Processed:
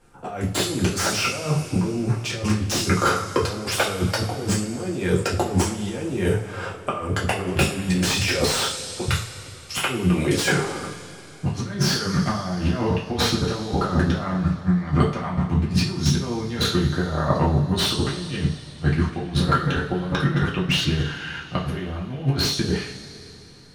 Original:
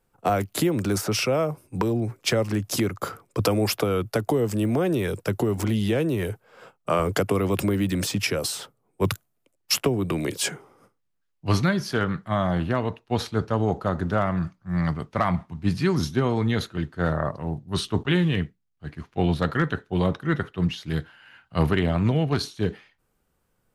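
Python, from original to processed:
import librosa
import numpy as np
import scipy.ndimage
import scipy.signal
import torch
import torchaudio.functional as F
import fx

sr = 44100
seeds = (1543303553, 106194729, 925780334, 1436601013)

y = fx.law_mismatch(x, sr, coded='mu', at=(10.54, 12.77))
y = scipy.signal.sosfilt(scipy.signal.butter(4, 10000.0, 'lowpass', fs=sr, output='sos'), y)
y = fx.over_compress(y, sr, threshold_db=-30.0, ratio=-0.5)
y = fx.rev_double_slope(y, sr, seeds[0], early_s=0.35, late_s=3.3, knee_db=-19, drr_db=-4.5)
y = fx.slew_limit(y, sr, full_power_hz=230.0)
y = y * librosa.db_to_amplitude(4.0)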